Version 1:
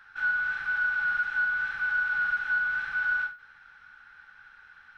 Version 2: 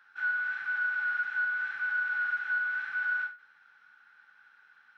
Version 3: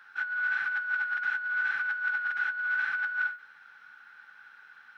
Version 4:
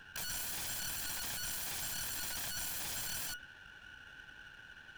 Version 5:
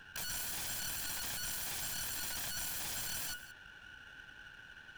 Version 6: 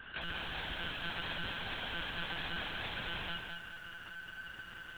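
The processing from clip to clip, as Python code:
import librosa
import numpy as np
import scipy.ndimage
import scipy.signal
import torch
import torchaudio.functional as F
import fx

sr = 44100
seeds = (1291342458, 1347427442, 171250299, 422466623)

y1 = scipy.signal.sosfilt(scipy.signal.bessel(8, 220.0, 'highpass', norm='mag', fs=sr, output='sos'), x)
y1 = fx.dynamic_eq(y1, sr, hz=1900.0, q=1.4, threshold_db=-42.0, ratio=4.0, max_db=6)
y1 = y1 * librosa.db_to_amplitude(-7.0)
y2 = fx.over_compress(y1, sr, threshold_db=-33.0, ratio=-0.5)
y2 = y2 * librosa.db_to_amplitude(4.0)
y3 = fx.lower_of_two(y2, sr, delay_ms=1.2)
y3 = (np.mod(10.0 ** (35.5 / 20.0) * y3 + 1.0, 2.0) - 1.0) / 10.0 ** (35.5 / 20.0)
y4 = y3 + 10.0 ** (-15.5 / 20.0) * np.pad(y3, (int(175 * sr / 1000.0), 0))[:len(y3)]
y5 = fx.lpc_monotone(y4, sr, seeds[0], pitch_hz=170.0, order=10)
y5 = fx.echo_crushed(y5, sr, ms=213, feedback_pct=35, bits=11, wet_db=-5)
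y5 = y5 * librosa.db_to_amplitude(4.5)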